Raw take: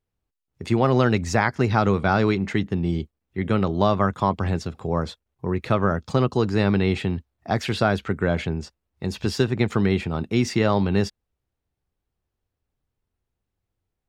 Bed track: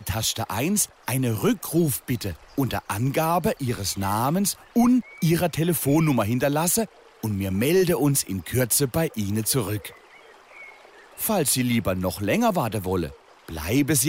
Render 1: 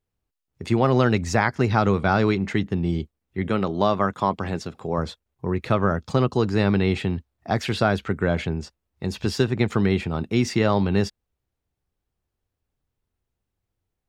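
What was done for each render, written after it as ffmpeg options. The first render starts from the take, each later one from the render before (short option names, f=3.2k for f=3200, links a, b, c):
-filter_complex "[0:a]asettb=1/sr,asplit=3[a][b][c];[a]atrim=end=3.494[d];[b]atrim=start=3.49:end=4.98,asetpts=PTS-STARTPTS,afade=t=in:d=0.004:c=qsin,afade=t=out:st=1.486:d=0.004:c=qsin,equalizer=f=60:w=0.71:g=-11[e];[c]atrim=start=4.976[f];[d][e]acrossfade=d=0.004:c1=hsin:c2=qsin[g];[g][f]acrossfade=d=0.004:c1=qsin:c2=hsin"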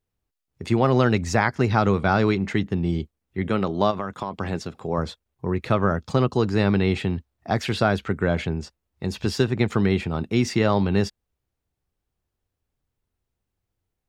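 -filter_complex "[0:a]asplit=3[a][b][c];[a]afade=t=out:st=3.9:d=0.02[d];[b]acompressor=threshold=-23dB:ratio=10:attack=3.2:release=140:knee=1:detection=peak,afade=t=in:st=3.9:d=0.02,afade=t=out:st=4.38:d=0.02[e];[c]afade=t=in:st=4.38:d=0.02[f];[d][e][f]amix=inputs=3:normalize=0"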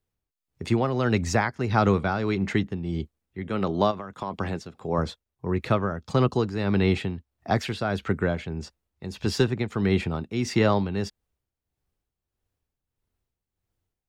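-filter_complex "[0:a]tremolo=f=1.6:d=0.6,acrossover=split=330|1300|3200[a][b][c][d];[a]aeval=exprs='clip(val(0),-1,0.0944)':c=same[e];[e][b][c][d]amix=inputs=4:normalize=0"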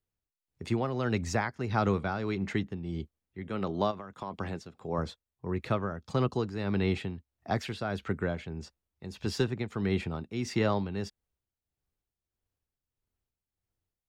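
-af "volume=-6.5dB"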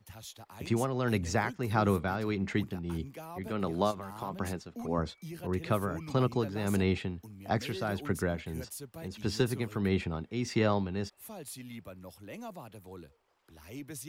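-filter_complex "[1:a]volume=-22.5dB[a];[0:a][a]amix=inputs=2:normalize=0"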